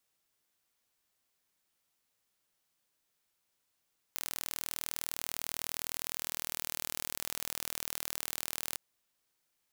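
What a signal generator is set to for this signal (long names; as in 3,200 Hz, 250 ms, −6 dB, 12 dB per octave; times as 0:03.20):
impulse train 39.8 per second, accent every 0, −9 dBFS 4.60 s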